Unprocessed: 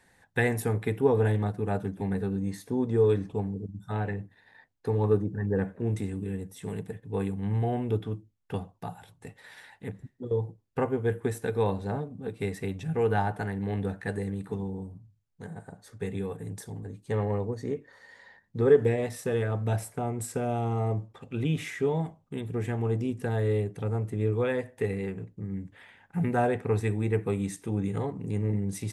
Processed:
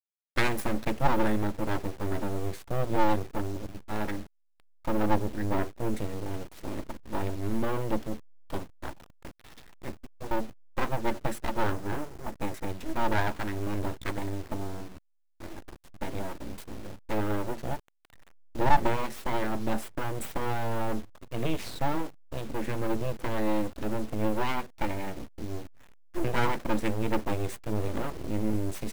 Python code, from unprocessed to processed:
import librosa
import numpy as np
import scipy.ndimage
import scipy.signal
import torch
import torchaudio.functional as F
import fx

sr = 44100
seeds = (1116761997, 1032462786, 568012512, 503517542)

y = fx.delta_hold(x, sr, step_db=-44.0)
y = fx.spec_box(y, sr, start_s=11.6, length_s=1.1, low_hz=1900.0, high_hz=4900.0, gain_db=-6)
y = np.abs(y)
y = F.gain(torch.from_numpy(y), 2.0).numpy()